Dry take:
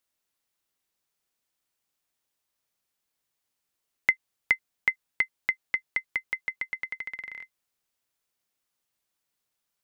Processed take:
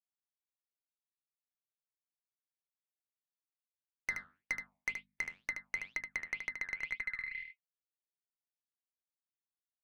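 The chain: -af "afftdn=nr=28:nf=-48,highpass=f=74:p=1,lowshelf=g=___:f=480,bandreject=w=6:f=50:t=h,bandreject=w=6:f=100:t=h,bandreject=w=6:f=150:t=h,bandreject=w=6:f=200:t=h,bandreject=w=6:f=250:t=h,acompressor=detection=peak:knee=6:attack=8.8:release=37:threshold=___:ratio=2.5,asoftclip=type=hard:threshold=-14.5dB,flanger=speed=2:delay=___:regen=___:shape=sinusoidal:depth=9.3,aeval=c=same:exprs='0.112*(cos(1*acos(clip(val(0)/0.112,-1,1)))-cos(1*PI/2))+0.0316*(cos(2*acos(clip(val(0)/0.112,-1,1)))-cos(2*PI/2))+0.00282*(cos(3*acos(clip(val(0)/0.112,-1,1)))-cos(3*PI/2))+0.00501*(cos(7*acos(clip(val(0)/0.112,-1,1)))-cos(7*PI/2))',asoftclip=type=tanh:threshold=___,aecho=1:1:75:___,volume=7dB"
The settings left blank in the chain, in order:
8.5, -35dB, 3.1, 80, -32.5dB, 0.447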